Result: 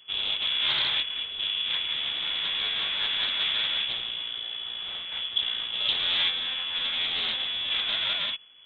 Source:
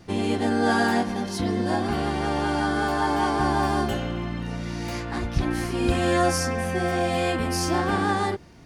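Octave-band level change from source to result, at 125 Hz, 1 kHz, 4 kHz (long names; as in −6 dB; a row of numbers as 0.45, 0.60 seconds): below −25 dB, −17.5 dB, +13.0 dB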